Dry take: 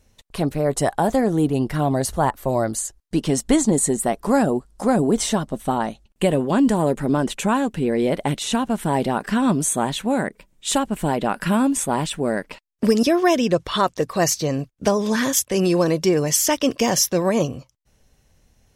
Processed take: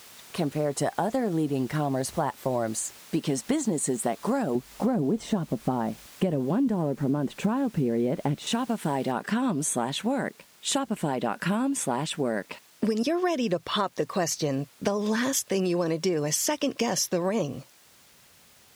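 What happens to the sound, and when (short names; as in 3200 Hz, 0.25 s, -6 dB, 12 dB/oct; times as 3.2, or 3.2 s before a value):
4.55–8.47 tilt -3 dB/oct
9.12 noise floor step -44 dB -52 dB
whole clip: HPF 120 Hz 12 dB/oct; high shelf 9600 Hz -7.5 dB; compressor, threshold -21 dBFS; gain -1.5 dB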